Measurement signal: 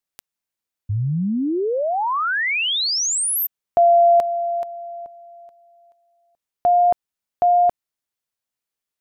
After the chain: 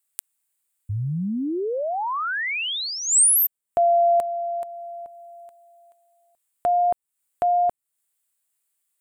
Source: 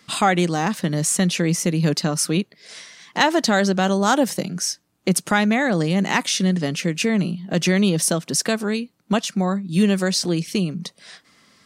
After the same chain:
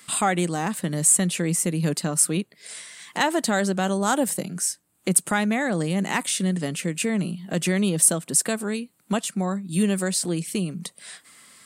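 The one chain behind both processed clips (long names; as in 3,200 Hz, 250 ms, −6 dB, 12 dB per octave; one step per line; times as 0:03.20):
high shelf with overshoot 6,900 Hz +6 dB, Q 3
one half of a high-frequency compander encoder only
level −4.5 dB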